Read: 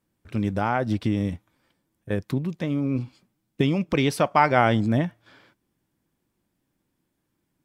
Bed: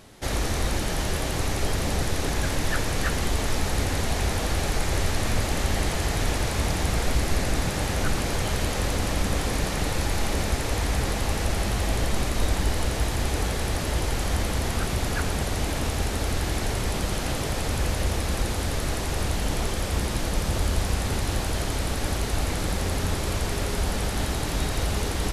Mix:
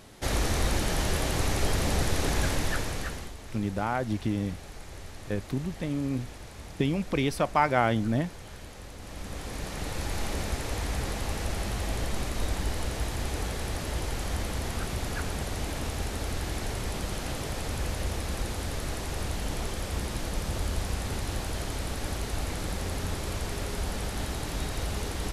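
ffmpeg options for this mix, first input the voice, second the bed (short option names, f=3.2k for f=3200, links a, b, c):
-filter_complex "[0:a]adelay=3200,volume=-5dB[a];[1:a]volume=11.5dB,afade=t=out:st=2.43:d=0.91:silence=0.133352,afade=t=in:st=8.97:d=1.22:silence=0.237137[b];[a][b]amix=inputs=2:normalize=0"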